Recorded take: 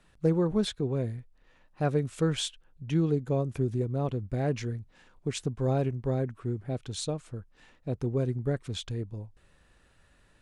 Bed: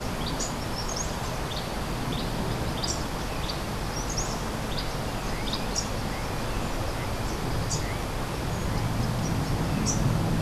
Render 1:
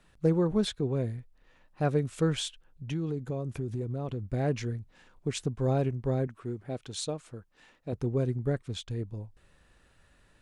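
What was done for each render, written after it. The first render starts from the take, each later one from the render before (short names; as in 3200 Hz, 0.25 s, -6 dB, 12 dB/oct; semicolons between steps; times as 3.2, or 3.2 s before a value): 2.36–4.26 compressor 4:1, threshold -29 dBFS; 6.27–7.93 low shelf 140 Hz -11 dB; 8.61–9.01 upward expander, over -49 dBFS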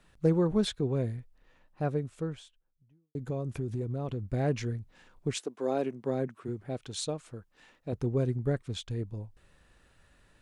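1.12–3.15 studio fade out; 5.34–6.47 HPF 350 Hz -> 120 Hz 24 dB/oct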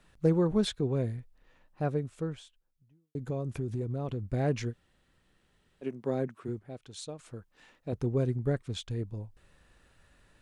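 4.71–5.84 room tone, crossfade 0.06 s; 6.59–7.19 gain -7.5 dB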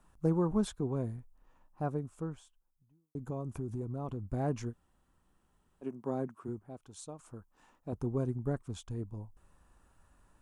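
ten-band EQ 125 Hz -5 dB, 500 Hz -7 dB, 1000 Hz +6 dB, 2000 Hz -11 dB, 4000 Hz -11 dB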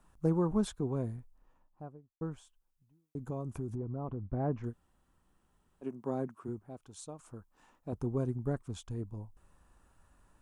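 1.17–2.21 studio fade out; 3.75–4.64 LPF 1500 Hz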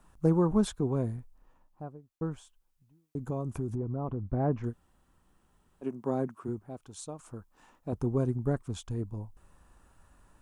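gain +4.5 dB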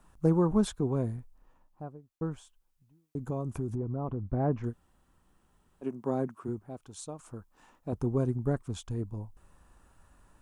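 nothing audible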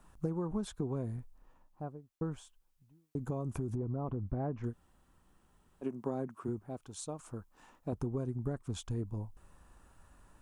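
compressor 16:1, threshold -31 dBFS, peak gain reduction 13 dB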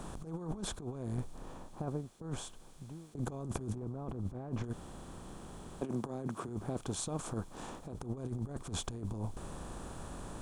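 per-bin compression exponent 0.6; negative-ratio compressor -37 dBFS, ratio -0.5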